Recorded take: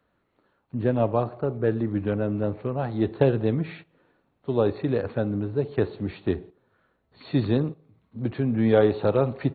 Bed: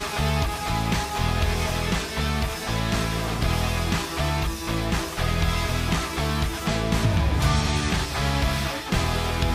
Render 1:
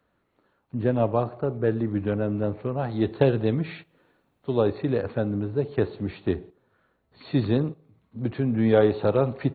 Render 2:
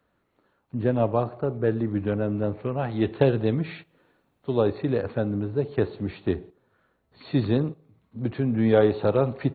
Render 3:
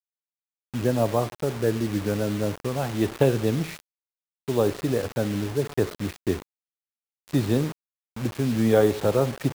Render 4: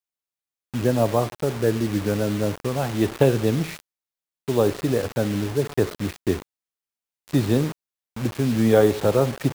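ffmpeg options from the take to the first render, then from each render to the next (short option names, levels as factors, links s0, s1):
-filter_complex "[0:a]asettb=1/sr,asplit=3[s0][s1][s2];[s0]atrim=end=2.894[s3];[s1]atrim=start=2.89:end=4.62,asetpts=PTS-STARTPTS,afade=t=in:d=0.004:c=qsin,afade=t=out:st=1.726:d=0.004:c=qsin,highshelf=f=3800:g=8[s4];[s2]atrim=start=4.616[s5];[s3][s4]acrossfade=d=0.004:c1=hsin:c2=qsin[s6];[s6][s5]acrossfade=d=0.004:c1=qsin:c2=hsin"
-filter_complex "[0:a]asettb=1/sr,asplit=3[s0][s1][s2];[s0]atrim=end=2.634[s3];[s1]atrim=start=2.63:end=3.21,asetpts=PTS-STARTPTS,afade=t=in:d=0.004:c=qsin,afade=t=out:st=0.576:d=0.004:c=qsin,lowpass=f=2900:t=q:w=1.7[s4];[s2]atrim=start=3.206[s5];[s3][s4]acrossfade=d=0.004:c1=hsin:c2=qsin[s6];[s6][s5]acrossfade=d=0.004:c1=qsin:c2=hsin"
-af "acrusher=bits=5:mix=0:aa=0.000001"
-af "volume=1.33"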